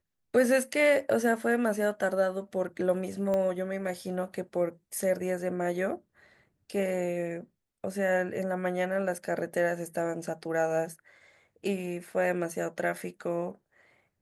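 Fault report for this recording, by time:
0:03.34: click −19 dBFS

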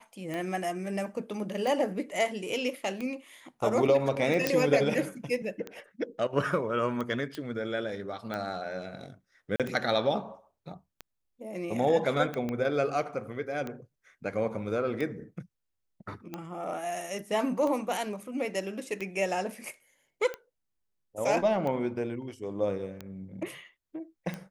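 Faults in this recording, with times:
scratch tick 45 rpm −22 dBFS
0:04.47: click
0:07.35: click −23 dBFS
0:09.56–0:09.60: drop-out 37 ms
0:12.49: click −21 dBFS

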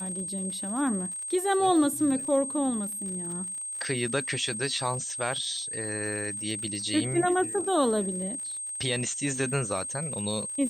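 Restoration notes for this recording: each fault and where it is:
surface crackle 69 per second −37 dBFS
whistle 8,400 Hz −33 dBFS

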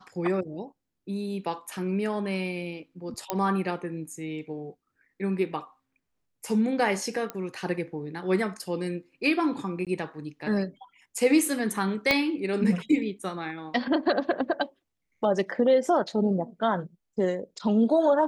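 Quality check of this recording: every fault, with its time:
0:03.30: click −11 dBFS
0:07.30: click −17 dBFS
0:09.85–0:09.87: drop-out 17 ms
0:12.11: click −8 dBFS

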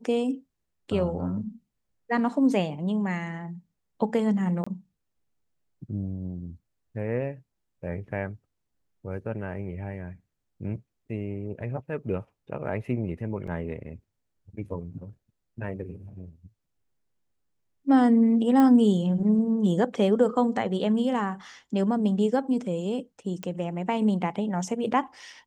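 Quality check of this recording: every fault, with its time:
0:04.64–0:04.67: drop-out 25 ms
0:13.47–0:13.48: drop-out 5.3 ms
0:18.60: click −13 dBFS
0:23.43: click −20 dBFS

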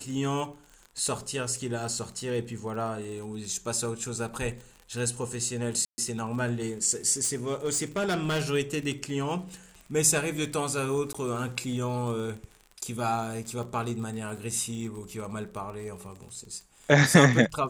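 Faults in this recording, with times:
surface crackle 40 per second −37 dBFS
0:05.85–0:05.98: drop-out 130 ms
0:07.23–0:08.42: clipping −24 dBFS
0:11.13–0:11.14: drop-out 15 ms

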